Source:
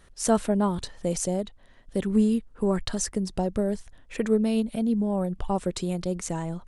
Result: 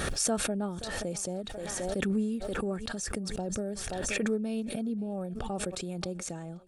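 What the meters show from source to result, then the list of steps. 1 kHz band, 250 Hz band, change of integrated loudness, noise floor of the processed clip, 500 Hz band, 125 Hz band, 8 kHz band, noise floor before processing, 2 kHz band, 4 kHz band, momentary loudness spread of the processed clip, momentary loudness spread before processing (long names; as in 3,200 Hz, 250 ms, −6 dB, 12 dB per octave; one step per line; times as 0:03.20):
−7.0 dB, −7.5 dB, −6.0 dB, −41 dBFS, −6.5 dB, −7.0 dB, −0.5 dB, −53 dBFS, +4.0 dB, +0.5 dB, 7 LU, 8 LU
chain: notch comb filter 1,000 Hz
feedback echo with a high-pass in the loop 528 ms, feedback 39%, high-pass 410 Hz, level −21.5 dB
background raised ahead of every attack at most 20 dB per second
level −8.5 dB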